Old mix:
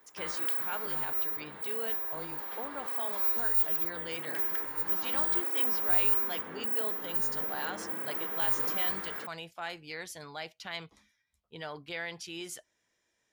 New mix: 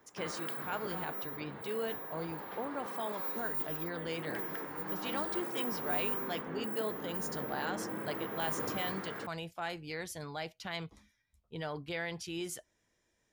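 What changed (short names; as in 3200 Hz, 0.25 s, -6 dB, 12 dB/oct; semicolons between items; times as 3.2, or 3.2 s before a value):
speech: add high shelf 6600 Hz +12 dB; master: add tilt -2.5 dB/oct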